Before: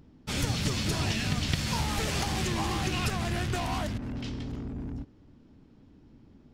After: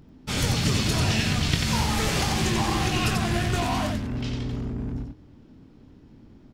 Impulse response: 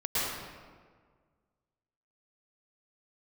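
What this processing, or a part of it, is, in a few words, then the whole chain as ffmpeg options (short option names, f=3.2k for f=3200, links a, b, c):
slapback doubling: -filter_complex "[0:a]asplit=3[a][b][c];[b]adelay=23,volume=-7dB[d];[c]adelay=90,volume=-4dB[e];[a][d][e]amix=inputs=3:normalize=0,volume=3.5dB"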